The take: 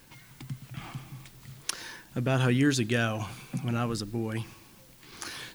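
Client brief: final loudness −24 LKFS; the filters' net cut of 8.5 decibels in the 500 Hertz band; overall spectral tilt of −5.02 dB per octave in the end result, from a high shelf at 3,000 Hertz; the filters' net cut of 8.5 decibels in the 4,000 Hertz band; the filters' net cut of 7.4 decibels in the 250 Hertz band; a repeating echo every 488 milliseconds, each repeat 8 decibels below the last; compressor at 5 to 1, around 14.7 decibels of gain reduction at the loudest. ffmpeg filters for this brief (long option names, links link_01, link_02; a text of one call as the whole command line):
ffmpeg -i in.wav -af "equalizer=frequency=250:width_type=o:gain=-6.5,equalizer=frequency=500:width_type=o:gain=-9,highshelf=frequency=3000:gain=-6.5,equalizer=frequency=4000:width_type=o:gain=-6,acompressor=threshold=-43dB:ratio=5,aecho=1:1:488|976|1464|1952|2440:0.398|0.159|0.0637|0.0255|0.0102,volume=22.5dB" out.wav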